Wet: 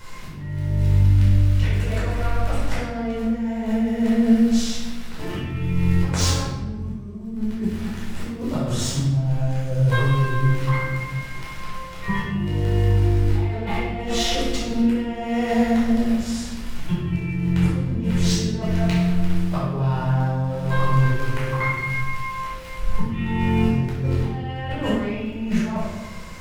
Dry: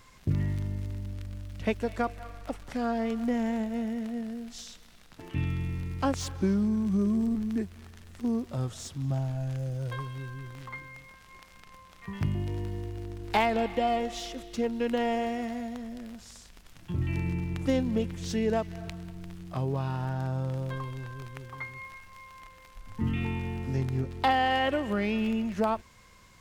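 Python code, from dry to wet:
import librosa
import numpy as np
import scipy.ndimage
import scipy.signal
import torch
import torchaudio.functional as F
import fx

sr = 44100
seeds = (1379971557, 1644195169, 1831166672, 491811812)

y = fx.over_compress(x, sr, threshold_db=-34.0, ratio=-0.5)
y = fx.room_shoebox(y, sr, seeds[0], volume_m3=630.0, walls='mixed', distance_m=4.8)
y = y * librosa.db_to_amplitude(1.5)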